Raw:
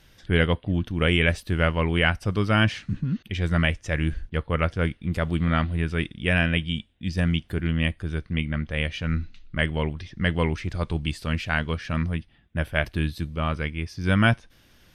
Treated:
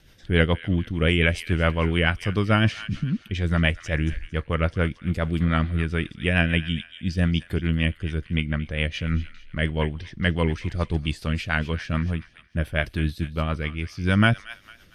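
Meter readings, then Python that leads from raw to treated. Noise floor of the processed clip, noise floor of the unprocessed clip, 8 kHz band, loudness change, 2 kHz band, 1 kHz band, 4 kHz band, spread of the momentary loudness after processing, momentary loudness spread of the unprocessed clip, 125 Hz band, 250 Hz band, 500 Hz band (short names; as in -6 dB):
-53 dBFS, -58 dBFS, n/a, +1.0 dB, 0.0 dB, -0.5 dB, 0.0 dB, 8 LU, 8 LU, +1.0 dB, +1.0 dB, +0.5 dB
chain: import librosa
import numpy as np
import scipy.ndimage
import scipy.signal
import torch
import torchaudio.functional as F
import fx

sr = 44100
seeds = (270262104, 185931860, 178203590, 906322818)

y = fx.echo_wet_highpass(x, sr, ms=227, feedback_pct=36, hz=1500.0, wet_db=-12.0)
y = fx.rotary(y, sr, hz=7.0)
y = y * librosa.db_to_amplitude(2.5)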